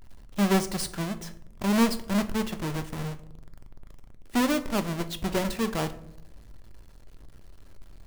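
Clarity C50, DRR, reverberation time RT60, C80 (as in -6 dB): 15.0 dB, 9.0 dB, 0.75 s, 18.0 dB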